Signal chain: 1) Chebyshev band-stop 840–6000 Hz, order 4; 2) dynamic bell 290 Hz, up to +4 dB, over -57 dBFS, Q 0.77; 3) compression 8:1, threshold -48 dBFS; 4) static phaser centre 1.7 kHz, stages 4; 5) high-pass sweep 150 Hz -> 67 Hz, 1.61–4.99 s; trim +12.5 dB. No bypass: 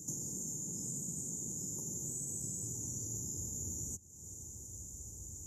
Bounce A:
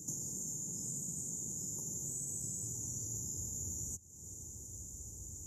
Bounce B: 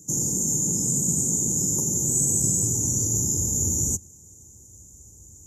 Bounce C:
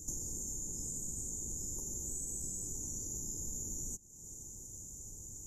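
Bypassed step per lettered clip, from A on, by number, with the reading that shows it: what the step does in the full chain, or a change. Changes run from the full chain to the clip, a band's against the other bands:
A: 2, 250 Hz band -2.5 dB; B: 3, mean gain reduction 12.5 dB; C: 5, 125 Hz band -3.0 dB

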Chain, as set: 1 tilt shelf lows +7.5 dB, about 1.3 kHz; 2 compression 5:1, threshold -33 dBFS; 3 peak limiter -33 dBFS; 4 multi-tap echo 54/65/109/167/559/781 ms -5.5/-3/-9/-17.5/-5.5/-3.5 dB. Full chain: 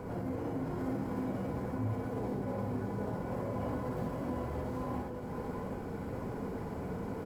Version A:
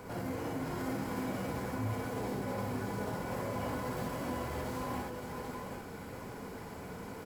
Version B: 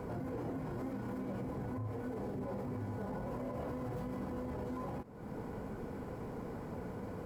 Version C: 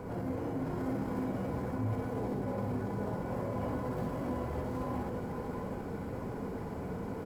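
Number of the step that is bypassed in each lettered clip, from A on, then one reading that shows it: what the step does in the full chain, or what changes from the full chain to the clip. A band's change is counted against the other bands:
1, 4 kHz band +11.0 dB; 4, echo-to-direct 2.0 dB to none; 2, mean gain reduction 11.5 dB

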